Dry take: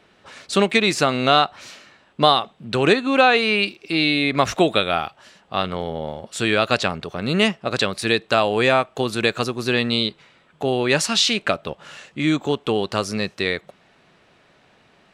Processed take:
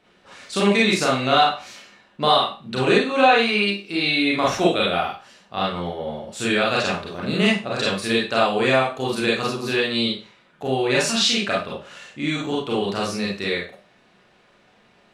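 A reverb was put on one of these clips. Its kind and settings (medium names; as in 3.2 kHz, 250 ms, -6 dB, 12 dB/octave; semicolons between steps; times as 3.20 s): Schroeder reverb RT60 0.33 s, combs from 31 ms, DRR -5 dB; trim -7 dB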